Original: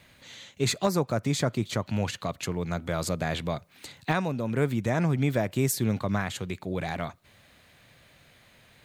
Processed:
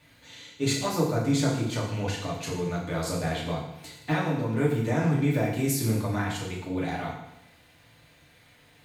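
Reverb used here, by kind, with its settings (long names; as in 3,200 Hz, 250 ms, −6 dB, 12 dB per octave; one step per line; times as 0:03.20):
feedback delay network reverb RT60 0.83 s, low-frequency decay 1.1×, high-frequency decay 1×, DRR −5.5 dB
level −6.5 dB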